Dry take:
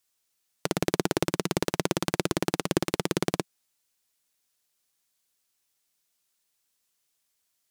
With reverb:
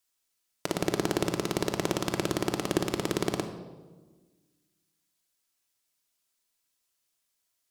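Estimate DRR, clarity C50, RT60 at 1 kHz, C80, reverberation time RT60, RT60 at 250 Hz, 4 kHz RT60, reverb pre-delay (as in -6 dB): 5.0 dB, 8.5 dB, 1.2 s, 10.0 dB, 1.3 s, 1.8 s, 0.90 s, 3 ms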